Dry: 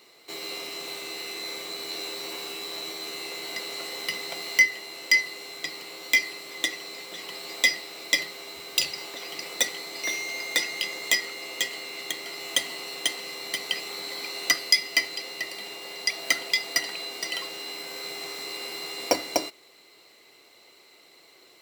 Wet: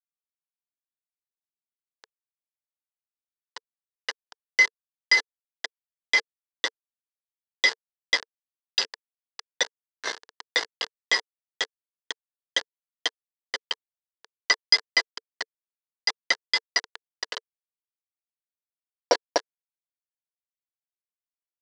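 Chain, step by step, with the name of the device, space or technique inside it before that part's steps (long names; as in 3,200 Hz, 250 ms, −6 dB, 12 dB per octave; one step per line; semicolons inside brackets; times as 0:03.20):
hand-held game console (bit reduction 4 bits; loudspeaker in its box 410–5,400 Hz, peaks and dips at 450 Hz +9 dB, 970 Hz +5 dB, 1,700 Hz +9 dB, 2,400 Hz −9 dB, 4,700 Hz +4 dB)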